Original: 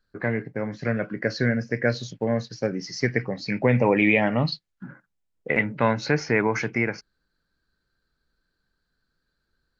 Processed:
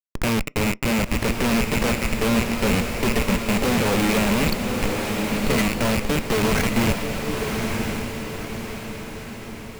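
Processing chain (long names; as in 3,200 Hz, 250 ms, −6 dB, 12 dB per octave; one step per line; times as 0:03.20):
loose part that buzzes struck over −36 dBFS, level −12 dBFS
elliptic high-pass filter 180 Hz, stop band 40 dB
spectral tilt −1.5 dB per octave
notch filter 5,500 Hz
comparator with hysteresis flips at −27 dBFS
feedback delay with all-pass diffusion 1,072 ms, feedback 50%, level −4 dB
on a send at −20.5 dB: convolution reverb RT60 0.25 s, pre-delay 3 ms
on the sum: level +4.5 dB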